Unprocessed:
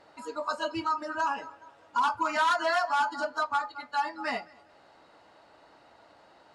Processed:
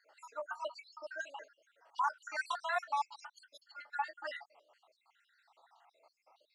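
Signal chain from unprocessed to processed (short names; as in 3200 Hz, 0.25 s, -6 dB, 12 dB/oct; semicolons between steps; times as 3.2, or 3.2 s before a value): random spectral dropouts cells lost 67%; HPF 500 Hz 24 dB/oct; gain -5.5 dB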